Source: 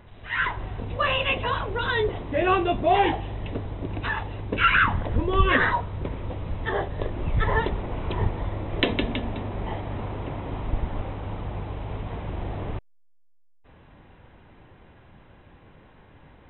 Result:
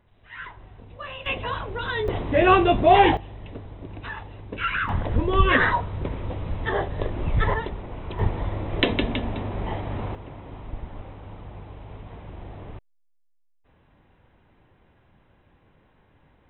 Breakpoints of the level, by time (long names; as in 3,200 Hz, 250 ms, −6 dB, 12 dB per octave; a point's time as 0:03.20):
−13 dB
from 0:01.26 −3 dB
from 0:02.08 +5 dB
from 0:03.17 −7 dB
from 0:04.89 +1.5 dB
from 0:07.54 −5 dB
from 0:08.19 +1.5 dB
from 0:10.15 −8 dB